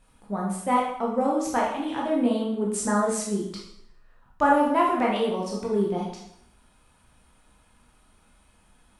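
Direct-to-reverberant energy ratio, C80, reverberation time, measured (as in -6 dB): -3.0 dB, 6.5 dB, 0.75 s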